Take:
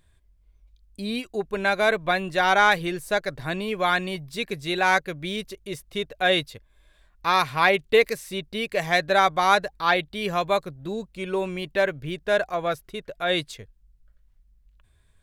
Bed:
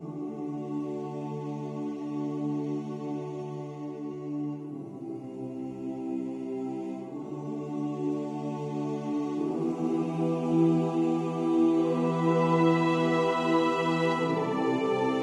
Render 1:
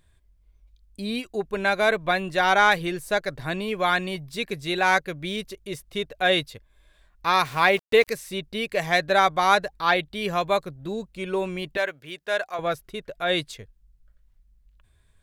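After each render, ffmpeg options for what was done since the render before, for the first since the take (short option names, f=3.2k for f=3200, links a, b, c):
-filter_complex "[0:a]asettb=1/sr,asplit=3[a][b][c];[a]atrim=end=7.454[d];[b]atrim=start=7.45:end=8.08,asetpts=PTS-STARTPTS,afade=t=in:d=0.004:c=qsin,afade=t=out:st=0.626:d=0.004:c=qsin,aeval=exprs='val(0)*gte(abs(val(0)),0.0133)':c=same[e];[c]atrim=start=8.076[f];[d][e]acrossfade=d=0.004:c1=hsin:c2=qsin[g];[g][f]acrossfade=d=0.004:c1=qsin:c2=hsin,asettb=1/sr,asplit=3[h][i][j];[h]atrim=end=11.774[k];[i]atrim=start=11.77:end=12.59,asetpts=PTS-STARTPTS,afade=t=in:d=0.004:c=qsin,afade=t=out:st=0.816:d=0.004:c=qsin,highpass=f=860:p=1[l];[j]atrim=start=12.586[m];[k][l]acrossfade=d=0.004:c1=hsin:c2=qsin[n];[n][m]acrossfade=d=0.004:c1=qsin:c2=hsin"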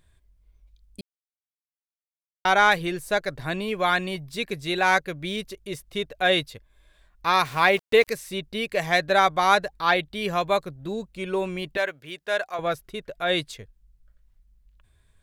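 -filter_complex "[0:a]asplit=3[a][b][c];[a]atrim=end=1.01,asetpts=PTS-STARTPTS,afade=t=out:st=1.006:d=0.004:c=hsin[d];[b]atrim=start=1.01:end=2.45,asetpts=PTS-STARTPTS,volume=0[e];[c]atrim=start=2.45,asetpts=PTS-STARTPTS,afade=t=in:d=0.004:c=hsin[f];[d][e][f]concat=n=3:v=0:a=1"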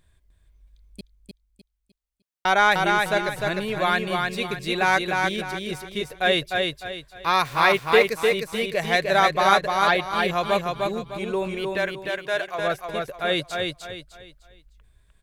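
-af "aecho=1:1:303|606|909|1212:0.668|0.221|0.0728|0.024"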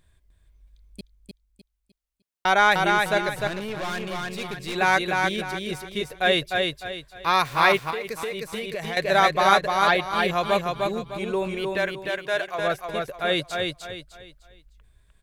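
-filter_complex "[0:a]asettb=1/sr,asplit=3[a][b][c];[a]atrim=end=3.474[d];[b]atrim=start=3.47:end=4.76,asetpts=PTS-STARTPTS,afade=t=in:d=0.004:c=qsin,afade=t=out:st=1.286:d=0.004:c=qsin,aeval=exprs='(tanh(22.4*val(0)+0.45)-tanh(0.45))/22.4':c=same[e];[c]atrim=start=4.756[f];[d][e]acrossfade=d=0.004:c1=hsin:c2=qsin[g];[g][f]acrossfade=d=0.004:c1=qsin:c2=hsin,asettb=1/sr,asplit=3[h][i][j];[h]atrim=end=7.904[k];[i]atrim=start=7.9:end=8.97,asetpts=PTS-STARTPTS,afade=t=in:d=0.004:c=qsin,afade=t=out:st=1.066:d=0.004:c=qsin,acompressor=threshold=-26dB:ratio=10:attack=3.2:release=140:knee=1:detection=peak[l];[j]atrim=start=8.966[m];[k][l]acrossfade=d=0.004:c1=hsin:c2=qsin[n];[n][m]acrossfade=d=0.004:c1=qsin:c2=hsin"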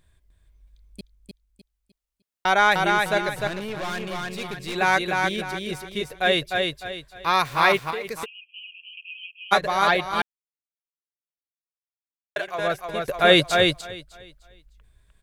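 -filter_complex "[0:a]asplit=3[a][b][c];[a]afade=t=out:st=8.24:d=0.02[d];[b]asuperpass=centerf=2800:order=20:qfactor=3.6,afade=t=in:st=8.24:d=0.02,afade=t=out:st=9.51:d=0.02[e];[c]afade=t=in:st=9.51:d=0.02[f];[d][e][f]amix=inputs=3:normalize=0,asplit=5[g][h][i][j][k];[g]atrim=end=10.22,asetpts=PTS-STARTPTS,afade=t=out:st=10.216:d=0.004:c=hsin[l];[h]atrim=start=10.22:end=12.36,asetpts=PTS-STARTPTS,volume=0[m];[i]atrim=start=12.36:end=13.082,asetpts=PTS-STARTPTS,afade=t=in:d=0.004:c=hsin[n];[j]atrim=start=13.078:end=13.812,asetpts=PTS-STARTPTS,volume=8.5dB[o];[k]atrim=start=13.808[p];[l][m][n]concat=n=3:v=0:a=1[q];[q][o]acrossfade=d=0.004:c1=hsin:c2=hsin[r];[r][p]acrossfade=d=0.004:c1=hsin:c2=hsin"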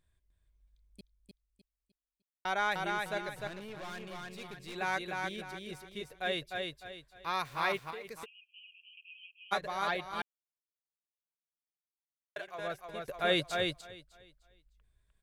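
-af "volume=-13.5dB"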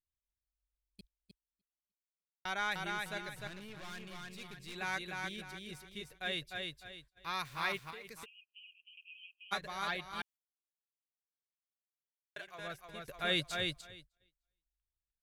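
-af "equalizer=f=580:t=o:w=2.1:g=-9,agate=range=-23dB:threshold=-58dB:ratio=16:detection=peak"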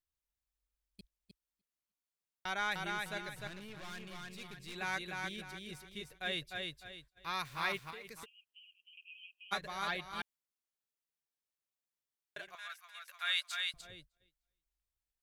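-filter_complex "[0:a]asettb=1/sr,asplit=3[a][b][c];[a]atrim=end=8.204[d];[b]atrim=start=8.2:end=8.93,asetpts=PTS-STARTPTS,afade=t=in:d=0.004:c=qsin,afade=t=out:st=0.726:d=0.004:c=qsin,equalizer=f=2.5k:t=o:w=0.22:g=-11[e];[c]atrim=start=8.926[f];[d][e]acrossfade=d=0.004:c1=hsin:c2=qsin[g];[g][f]acrossfade=d=0.004:c1=qsin:c2=hsin,asettb=1/sr,asplit=3[h][i][j];[h]atrim=end=12.554[k];[i]atrim=start=12.55:end=13.74,asetpts=PTS-STARTPTS,afade=t=in:d=0.004:c=qsin,afade=t=out:st=1.186:d=0.004:c=qsin,highpass=f=1.1k:w=0.5412,highpass=f=1.1k:w=1.3066[l];[j]atrim=start=13.736[m];[k][l]acrossfade=d=0.004:c1=hsin:c2=qsin[n];[n][m]acrossfade=d=0.004:c1=qsin:c2=hsin"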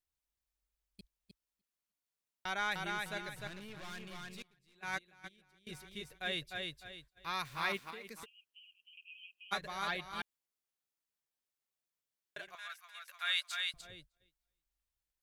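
-filter_complex "[0:a]asettb=1/sr,asplit=3[a][b][c];[a]atrim=end=4.424[d];[b]atrim=start=4.42:end=5.67,asetpts=PTS-STARTPTS,afade=t=in:d=0.004:c=qsin,afade=t=out:st=1.246:d=0.004:c=qsin,agate=range=-22dB:threshold=-38dB:ratio=16:release=100:detection=peak[e];[c]atrim=start=5.666[f];[d][e]acrossfade=d=0.004:c1=hsin:c2=qsin[g];[g][f]acrossfade=d=0.004:c1=qsin:c2=hsin,asettb=1/sr,asplit=3[h][i][j];[h]atrim=end=7.694[k];[i]atrim=start=7.69:end=8.2,asetpts=PTS-STARTPTS,afade=t=in:d=0.004:c=qsin,afade=t=out:st=0.506:d=0.004:c=qsin,lowshelf=f=170:t=q:w=3:g=-6.5[l];[j]atrim=start=8.196[m];[k][l]acrossfade=d=0.004:c1=hsin:c2=qsin[n];[n][m]acrossfade=d=0.004:c1=qsin:c2=hsin"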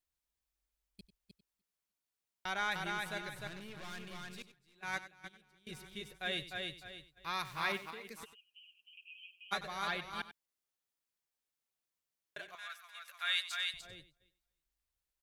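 -af "aecho=1:1:95:0.2"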